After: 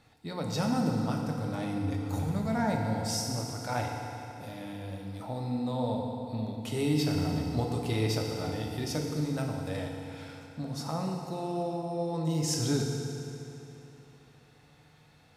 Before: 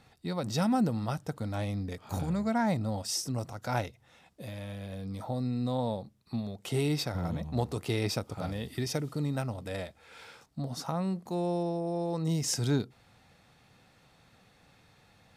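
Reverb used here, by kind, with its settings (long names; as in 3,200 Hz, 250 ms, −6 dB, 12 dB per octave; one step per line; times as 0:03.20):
feedback delay network reverb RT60 3.1 s, high-frequency decay 0.8×, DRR 0 dB
level −2.5 dB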